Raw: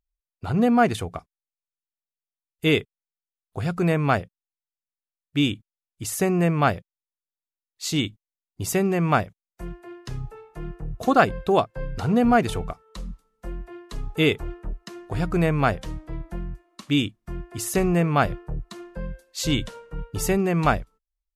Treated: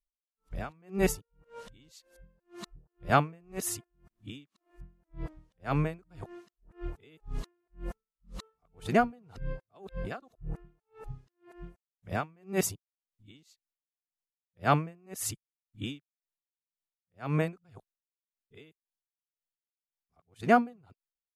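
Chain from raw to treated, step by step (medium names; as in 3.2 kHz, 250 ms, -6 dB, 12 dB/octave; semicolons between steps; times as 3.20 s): reverse the whole clip; logarithmic tremolo 1.9 Hz, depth 37 dB; trim -2.5 dB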